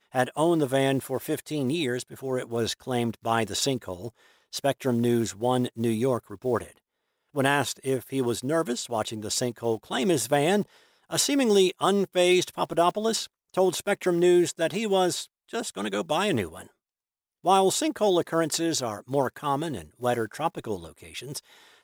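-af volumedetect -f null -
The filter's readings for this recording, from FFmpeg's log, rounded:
mean_volume: -26.5 dB
max_volume: -8.2 dB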